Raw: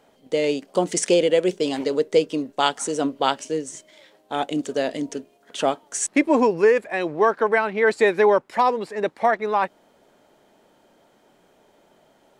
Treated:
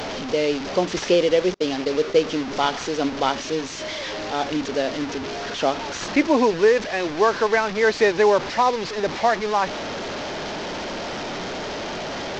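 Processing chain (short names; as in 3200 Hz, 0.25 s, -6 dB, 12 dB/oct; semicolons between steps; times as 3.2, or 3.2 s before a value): delta modulation 32 kbps, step -23.5 dBFS; 1.54–2.22 gate -26 dBFS, range -38 dB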